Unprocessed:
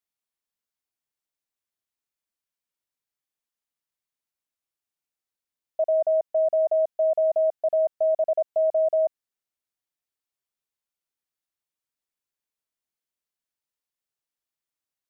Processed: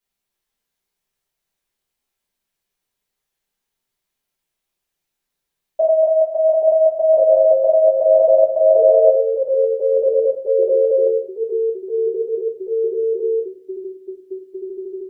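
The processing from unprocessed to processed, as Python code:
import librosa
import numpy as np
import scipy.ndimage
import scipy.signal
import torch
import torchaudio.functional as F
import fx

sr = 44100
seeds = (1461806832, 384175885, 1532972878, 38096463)

y = fx.highpass(x, sr, hz=430.0, slope=6, at=(5.81, 6.62))
y = fx.echo_pitch(y, sr, ms=280, semitones=-3, count=3, db_per_echo=-6.0)
y = fx.room_shoebox(y, sr, seeds[0], volume_m3=40.0, walls='mixed', distance_m=1.3)
y = y * 10.0 ** (2.0 / 20.0)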